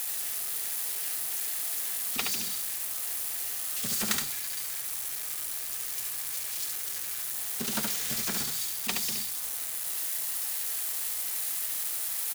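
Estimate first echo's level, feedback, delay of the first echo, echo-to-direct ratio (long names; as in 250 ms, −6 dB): −4.0 dB, repeats not evenly spaced, 71 ms, −4.0 dB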